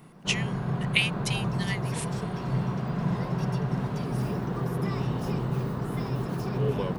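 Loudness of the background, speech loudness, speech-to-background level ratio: −30.0 LKFS, −30.5 LKFS, −0.5 dB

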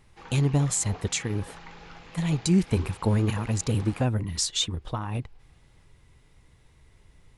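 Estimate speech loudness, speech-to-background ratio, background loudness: −27.0 LKFS, 19.0 dB, −46.0 LKFS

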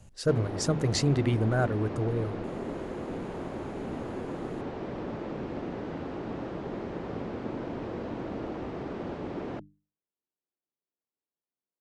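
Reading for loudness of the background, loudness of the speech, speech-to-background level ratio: −36.5 LKFS, −28.5 LKFS, 8.0 dB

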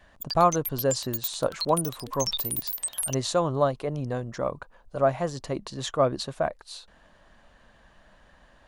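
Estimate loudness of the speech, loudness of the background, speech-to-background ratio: −28.0 LKFS, −31.0 LKFS, 3.0 dB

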